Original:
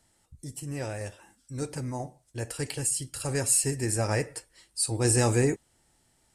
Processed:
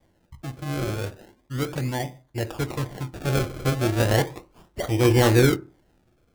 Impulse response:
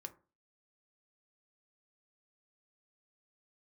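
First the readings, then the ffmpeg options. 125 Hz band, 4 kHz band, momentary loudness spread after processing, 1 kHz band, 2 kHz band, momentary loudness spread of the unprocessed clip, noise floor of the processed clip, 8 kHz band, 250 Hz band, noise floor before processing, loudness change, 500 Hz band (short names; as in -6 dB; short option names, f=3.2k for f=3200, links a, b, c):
+6.5 dB, +5.5 dB, 17 LU, +7.0 dB, +7.0 dB, 17 LU, -65 dBFS, -9.0 dB, +7.0 dB, -68 dBFS, +4.0 dB, +6.5 dB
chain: -filter_complex "[0:a]aresample=11025,aresample=44100,acrusher=samples=32:mix=1:aa=0.000001:lfo=1:lforange=32:lforate=0.35,asplit=2[a][b];[1:a]atrim=start_sample=2205[c];[b][c]afir=irnorm=-1:irlink=0,volume=6dB[d];[a][d]amix=inputs=2:normalize=0"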